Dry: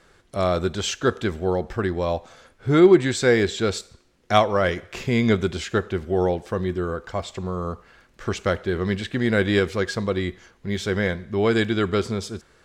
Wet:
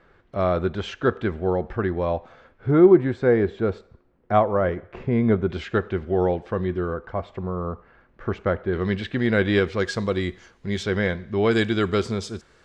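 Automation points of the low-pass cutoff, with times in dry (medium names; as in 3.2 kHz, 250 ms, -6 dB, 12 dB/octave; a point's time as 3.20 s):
2.2 kHz
from 2.71 s 1.2 kHz
from 5.50 s 2.7 kHz
from 6.94 s 1.6 kHz
from 8.73 s 3.8 kHz
from 9.80 s 8.3 kHz
from 10.83 s 4.4 kHz
from 11.51 s 8 kHz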